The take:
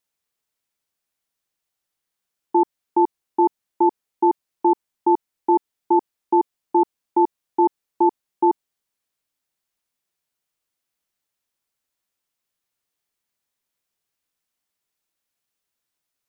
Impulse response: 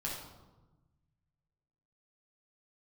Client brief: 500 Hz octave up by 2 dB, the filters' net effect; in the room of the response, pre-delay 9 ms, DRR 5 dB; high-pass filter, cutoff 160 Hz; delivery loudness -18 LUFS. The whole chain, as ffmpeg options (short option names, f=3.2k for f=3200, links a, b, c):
-filter_complex "[0:a]highpass=160,equalizer=f=500:t=o:g=4.5,asplit=2[a][b];[1:a]atrim=start_sample=2205,adelay=9[c];[b][c]afir=irnorm=-1:irlink=0,volume=-7dB[d];[a][d]amix=inputs=2:normalize=0,volume=-0.5dB"